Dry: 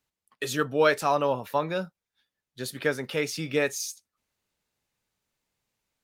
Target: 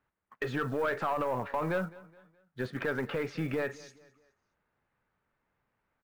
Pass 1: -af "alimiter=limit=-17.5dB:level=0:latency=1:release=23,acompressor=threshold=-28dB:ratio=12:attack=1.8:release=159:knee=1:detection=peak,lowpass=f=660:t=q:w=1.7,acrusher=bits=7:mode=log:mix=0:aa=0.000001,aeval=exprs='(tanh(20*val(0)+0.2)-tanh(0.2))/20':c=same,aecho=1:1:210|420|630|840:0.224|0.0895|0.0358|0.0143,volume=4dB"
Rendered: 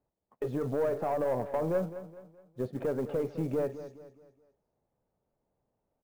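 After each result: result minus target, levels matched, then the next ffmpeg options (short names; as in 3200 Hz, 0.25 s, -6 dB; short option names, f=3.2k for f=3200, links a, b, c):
2000 Hz band -14.0 dB; echo-to-direct +7.5 dB
-af "alimiter=limit=-17.5dB:level=0:latency=1:release=23,acompressor=threshold=-28dB:ratio=12:attack=1.8:release=159:knee=1:detection=peak,lowpass=f=1.5k:t=q:w=1.7,acrusher=bits=7:mode=log:mix=0:aa=0.000001,aeval=exprs='(tanh(20*val(0)+0.2)-tanh(0.2))/20':c=same,aecho=1:1:210|420|630|840:0.224|0.0895|0.0358|0.0143,volume=4dB"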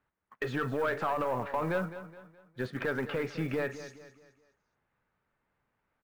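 echo-to-direct +7.5 dB
-af "alimiter=limit=-17.5dB:level=0:latency=1:release=23,acompressor=threshold=-28dB:ratio=12:attack=1.8:release=159:knee=1:detection=peak,lowpass=f=1.5k:t=q:w=1.7,acrusher=bits=7:mode=log:mix=0:aa=0.000001,aeval=exprs='(tanh(20*val(0)+0.2)-tanh(0.2))/20':c=same,aecho=1:1:210|420|630:0.0944|0.0378|0.0151,volume=4dB"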